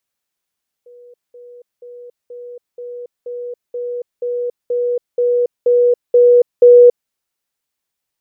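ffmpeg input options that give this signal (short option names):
-f lavfi -i "aevalsrc='pow(10,(-38.5+3*floor(t/0.48))/20)*sin(2*PI*486*t)*clip(min(mod(t,0.48),0.28-mod(t,0.48))/0.005,0,1)':d=6.24:s=44100"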